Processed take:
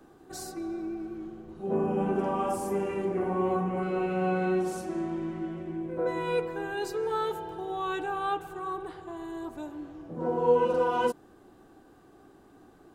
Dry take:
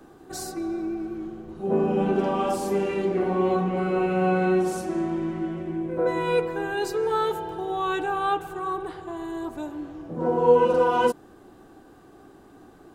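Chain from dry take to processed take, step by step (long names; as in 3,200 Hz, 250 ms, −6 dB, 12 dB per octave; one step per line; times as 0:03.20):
0:01.75–0:03.83: graphic EQ with 15 bands 100 Hz +7 dB, 1,000 Hz +4 dB, 4,000 Hz −11 dB, 10,000 Hz +5 dB
level −5.5 dB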